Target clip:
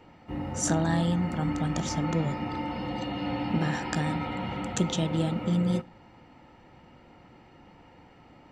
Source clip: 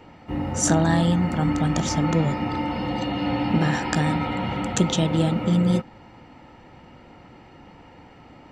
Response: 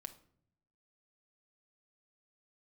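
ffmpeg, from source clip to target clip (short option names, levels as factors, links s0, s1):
-filter_complex "[0:a]asplit=2[s0][s1];[1:a]atrim=start_sample=2205,atrim=end_sample=6174[s2];[s1][s2]afir=irnorm=-1:irlink=0,volume=0.501[s3];[s0][s3]amix=inputs=2:normalize=0,volume=0.376"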